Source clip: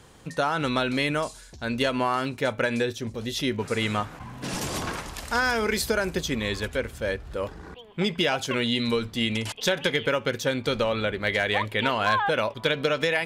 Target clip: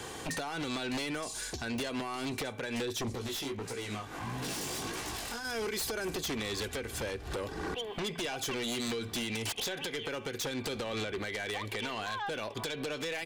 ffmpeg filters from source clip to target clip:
-filter_complex "[0:a]highpass=f=220:p=1,bandreject=f=1.3k:w=14,aecho=1:1:2.6:0.34,acompressor=threshold=-34dB:ratio=6,alimiter=level_in=4.5dB:limit=-24dB:level=0:latency=1:release=215,volume=-4.5dB,acrossover=split=350|3000[a][b][c];[b]acompressor=threshold=-46dB:ratio=6[d];[a][d][c]amix=inputs=3:normalize=0,aeval=exprs='0.0531*(cos(1*acos(clip(val(0)/0.0531,-1,1)))-cos(1*PI/2))+0.00237*(cos(6*acos(clip(val(0)/0.0531,-1,1)))-cos(6*PI/2))':c=same,aeval=exprs='0.0631*sin(PI/2*5.01*val(0)/0.0631)':c=same,asettb=1/sr,asplit=3[e][f][g];[e]atrim=end=3.154[h];[f]atrim=start=3.15:end=5.45,asetpts=PTS-STARTPTS,afade=t=in:d=0.004:c=qsin,afade=t=out:st=2.296:d=0.004:c=qsin,flanger=delay=15.5:depth=6.5:speed=1.6[i];[g]atrim=start=5.446[j];[h][i]acrossfade=d=0.004:c1=hsin:c2=qsin[k];[k][j]acrossfade=d=0.004:c1=qsin:c2=hsin,volume=-6.5dB"

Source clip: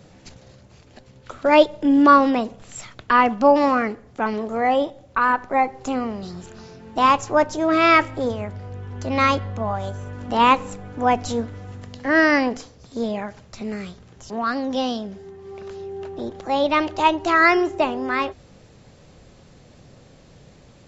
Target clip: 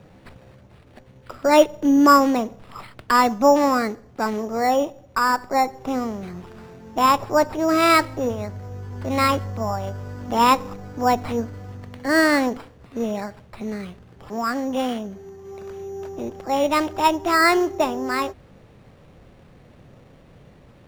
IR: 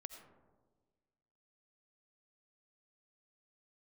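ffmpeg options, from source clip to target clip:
-af "acrusher=samples=7:mix=1:aa=0.000001,highshelf=f=5.5k:g=-12"

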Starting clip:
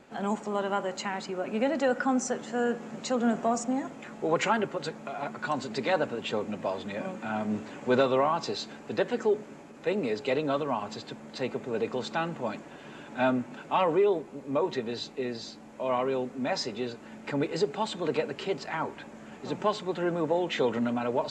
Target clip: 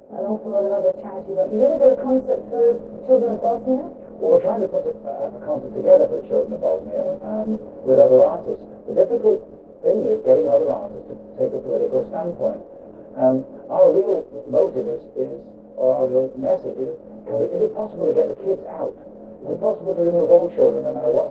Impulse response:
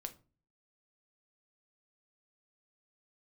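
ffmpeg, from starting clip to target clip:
-af "afftfilt=real='re':imag='-im':win_size=2048:overlap=0.75,lowpass=f=550:t=q:w=4.9,volume=6.5dB" -ar 48000 -c:a libopus -b:a 12k

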